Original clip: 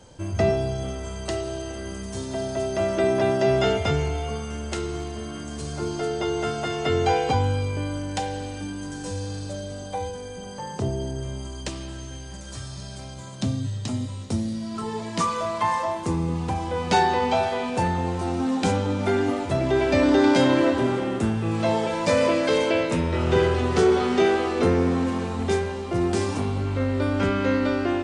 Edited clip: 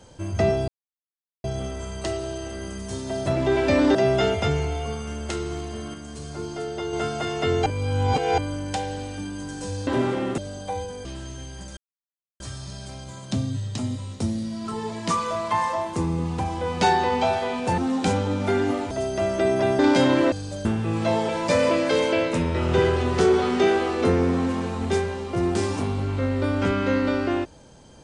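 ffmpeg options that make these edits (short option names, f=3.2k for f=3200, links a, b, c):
-filter_complex "[0:a]asplit=17[a][b][c][d][e][f][g][h][i][j][k][l][m][n][o][p][q];[a]atrim=end=0.68,asetpts=PTS-STARTPTS,afade=t=out:st=0.676:d=0.004:c=hsin,apad=pad_dur=0.76[r];[b]atrim=start=0.68:end=2.502,asetpts=PTS-STARTPTS,afade=t=in:d=0.004:c=hsin[s];[c]atrim=start=19.498:end=20.192[t];[d]atrim=start=3.378:end=5.372[u];[e]atrim=start=5.368:end=6.362,asetpts=PTS-STARTPTS,volume=-4dB[v];[f]atrim=start=6.358:end=7.092[w];[g]atrim=start=7.088:end=7.812,asetpts=PTS-STARTPTS,areverse[x];[h]atrim=start=7.808:end=9.302[y];[i]atrim=start=20.718:end=21.232[z];[j]atrim=start=9.628:end=10.302[aa];[k]atrim=start=11.778:end=12.5,asetpts=PTS-STARTPTS,afade=t=out:st=0.718:d=0.004:c=hsin,apad=pad_dur=0.63[ab];[l]atrim=start=12.5:end=17.882,asetpts=PTS-STARTPTS,afade=t=in:d=0.004:c=hsin[ac];[m]atrim=start=18.368:end=19.502[ad];[n]atrim=start=2.498:end=3.382[ae];[o]atrim=start=20.188:end=20.722[af];[p]atrim=start=9.298:end=9.632[ag];[q]atrim=start=21.228[ah];[r][s]concat=n=2:v=0:a=1[ai];[ai][t]acrossfade=d=0.004:c1=hsin:c2=hsin[aj];[aj][u]acrossfade=d=0.004:c1=hsin:c2=hsin[ak];[ak][v]acrossfade=d=0.004:c1=hsin:c2=hsin[al];[al][w]acrossfade=d=0.004:c1=hsin:c2=hsin[am];[am][x]acrossfade=d=0.004:c1=hsin:c2=hsin[an];[an][y]acrossfade=d=0.004:c1=hsin:c2=hsin[ao];[ao][z]acrossfade=d=0.004:c1=hsin:c2=hsin[ap];[ap][aa]acrossfade=d=0.004:c1=hsin:c2=hsin[aq];[ab][ac]concat=n=2:v=0:a=1[ar];[aq][ar]acrossfade=d=0.004:c1=hsin:c2=hsin[as];[as][ad]acrossfade=d=0.004:c1=hsin:c2=hsin[at];[at][ae]acrossfade=d=0.004:c1=hsin:c2=hsin[au];[au][af]acrossfade=d=0.004:c1=hsin:c2=hsin[av];[av][ag]acrossfade=d=0.004:c1=hsin:c2=hsin[aw];[aw][ah]acrossfade=d=0.004:c1=hsin:c2=hsin"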